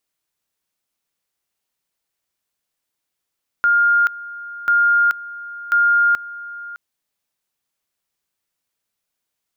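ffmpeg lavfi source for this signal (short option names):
-f lavfi -i "aevalsrc='pow(10,(-11.5-18*gte(mod(t,1.04),0.43))/20)*sin(2*PI*1410*t)':d=3.12:s=44100"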